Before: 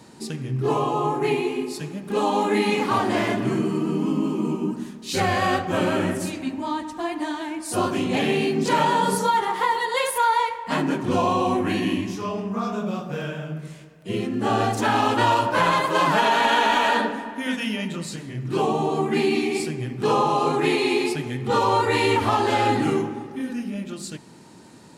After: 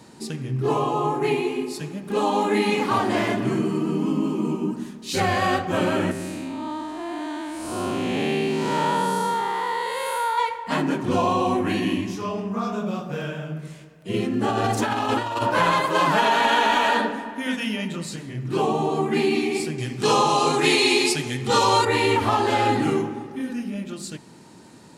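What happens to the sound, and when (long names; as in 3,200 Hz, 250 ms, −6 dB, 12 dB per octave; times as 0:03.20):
0:06.11–0:10.38: spectrum smeared in time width 257 ms
0:14.14–0:15.54: compressor whose output falls as the input rises −22 dBFS, ratio −0.5
0:19.78–0:21.85: parametric band 6,500 Hz +12.5 dB 2.4 octaves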